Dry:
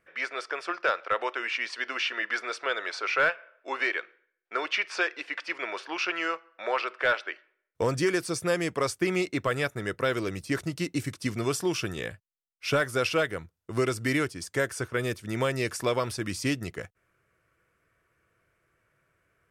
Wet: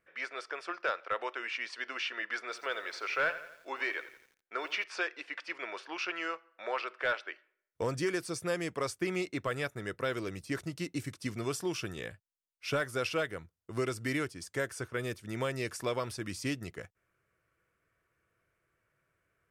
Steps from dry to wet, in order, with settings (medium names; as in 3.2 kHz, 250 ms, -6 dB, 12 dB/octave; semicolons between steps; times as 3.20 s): 2.44–4.84 s: bit-crushed delay 85 ms, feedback 55%, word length 8-bit, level -13.5 dB; trim -6.5 dB